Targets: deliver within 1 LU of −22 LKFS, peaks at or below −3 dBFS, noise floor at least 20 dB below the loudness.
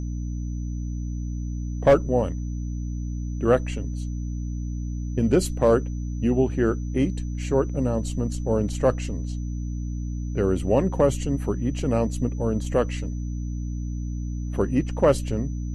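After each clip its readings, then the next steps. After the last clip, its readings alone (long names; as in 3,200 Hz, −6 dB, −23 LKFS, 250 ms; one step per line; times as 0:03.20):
mains hum 60 Hz; hum harmonics up to 300 Hz; level of the hum −27 dBFS; interfering tone 6,000 Hz; level of the tone −52 dBFS; integrated loudness −25.5 LKFS; sample peak −7.0 dBFS; target loudness −22.0 LKFS
→ hum removal 60 Hz, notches 5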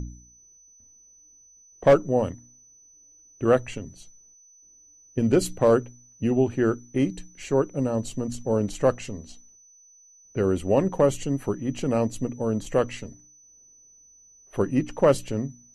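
mains hum none found; interfering tone 6,000 Hz; level of the tone −52 dBFS
→ notch filter 6,000 Hz, Q 30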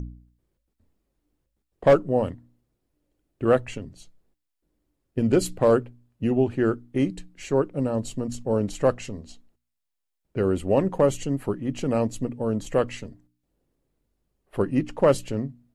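interfering tone none found; integrated loudness −24.5 LKFS; sample peak −8.0 dBFS; target loudness −22.0 LKFS
→ level +2.5 dB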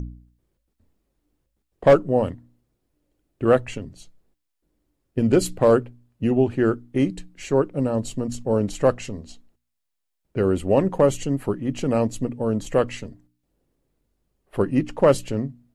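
integrated loudness −22.0 LKFS; sample peak −5.5 dBFS; background noise floor −78 dBFS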